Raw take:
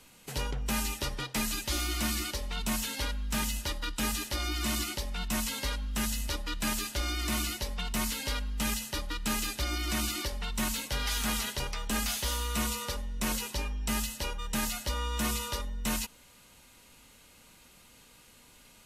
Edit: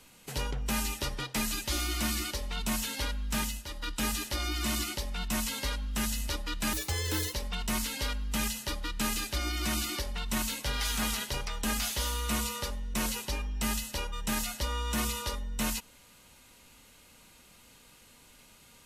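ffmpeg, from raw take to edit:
-filter_complex "[0:a]asplit=5[a][b][c][d][e];[a]atrim=end=3.65,asetpts=PTS-STARTPTS,afade=t=out:st=3.4:d=0.25:silence=0.375837[f];[b]atrim=start=3.65:end=3.66,asetpts=PTS-STARTPTS,volume=-8.5dB[g];[c]atrim=start=3.66:end=6.734,asetpts=PTS-STARTPTS,afade=t=in:d=0.25:silence=0.375837[h];[d]atrim=start=6.73:end=7.6,asetpts=PTS-STARTPTS,asetrate=63063,aresample=44100,atrim=end_sample=26830,asetpts=PTS-STARTPTS[i];[e]atrim=start=7.596[j];[f][g][h]concat=n=3:v=0:a=1[k];[k][i]acrossfade=d=0.004:c1=hsin:c2=hsin[l];[l][j]acrossfade=d=0.004:c1=hsin:c2=hsin"

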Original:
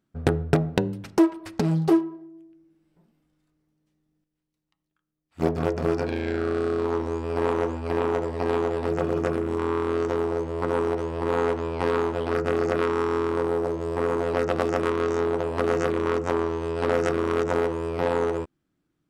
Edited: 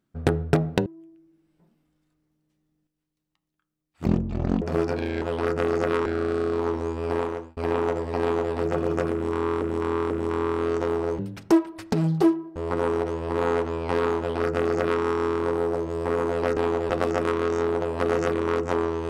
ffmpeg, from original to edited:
-filter_complex "[0:a]asplit=13[a][b][c][d][e][f][g][h][i][j][k][l][m];[a]atrim=end=0.862[n];[b]atrim=start=2.228:end=5.434[o];[c]atrim=start=5.43:end=5.72,asetpts=PTS-STARTPTS,asetrate=22932,aresample=44100,atrim=end_sample=24594,asetpts=PTS-STARTPTS[p];[d]atrim=start=5.716:end=6.322[q];[e]atrim=start=12.098:end=12.942[r];[f]atrim=start=6.318:end=7.83,asetpts=PTS-STARTPTS,afade=t=out:st=1.042:d=0.47[s];[g]atrim=start=7.83:end=9.882,asetpts=PTS-STARTPTS,afade=t=in:d=0.004:c=hsin[t];[h]atrim=start=9.388:end=9.882[u];[i]atrim=start=9.388:end=10.472[v];[j]atrim=start=0.858:end=2.232[w];[k]atrim=start=10.468:end=14.482[x];[l]atrim=start=8.468:end=8.802[y];[m]atrim=start=14.478[z];[n][o]acrossfade=d=0.004:c1=hsin:c2=hsin[aa];[aa][p]acrossfade=d=0.004:c1=hsin:c2=hsin[ab];[ab][q]acrossfade=d=0.004:c1=hsin:c2=hsin[ac];[ac][r]acrossfade=d=0.004:c1=hsin:c2=hsin[ad];[s][t]concat=n=2:v=0:a=1[ae];[ad][ae]acrossfade=d=0.004:c1=hsin:c2=hsin[af];[af][u]acrossfade=d=0.004:c1=hsin:c2=hsin[ag];[ag][v]acrossfade=d=0.004:c1=hsin:c2=hsin[ah];[ah][w]acrossfade=d=0.004:c1=hsin:c2=hsin[ai];[ai][x]acrossfade=d=0.004:c1=hsin:c2=hsin[aj];[aj][y]acrossfade=d=0.004:c1=hsin:c2=hsin[ak];[ak][z]acrossfade=d=0.004:c1=hsin:c2=hsin"

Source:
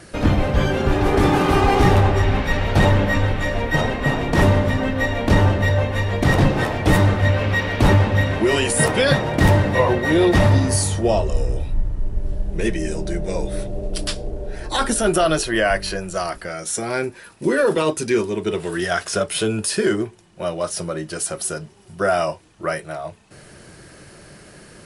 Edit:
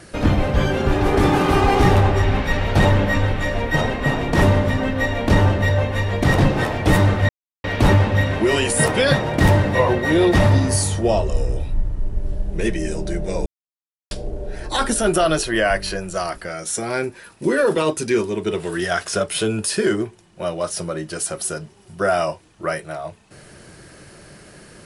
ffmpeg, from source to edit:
-filter_complex "[0:a]asplit=5[a][b][c][d][e];[a]atrim=end=7.29,asetpts=PTS-STARTPTS,afade=t=out:st=7.286:d=0.004:c=hsin[f];[b]atrim=start=7.29:end=7.64,asetpts=PTS-STARTPTS,volume=0[g];[c]atrim=start=7.64:end=13.46,asetpts=PTS-STARTPTS,afade=t=in:d=0.004:c=hsin,afade=t=out:st=5.816:d=0.004:c=hsin[h];[d]atrim=start=13.46:end=14.11,asetpts=PTS-STARTPTS,volume=0[i];[e]atrim=start=14.11,asetpts=PTS-STARTPTS,afade=t=in:d=0.004:c=hsin[j];[f][g][h][i][j]concat=n=5:v=0:a=1"

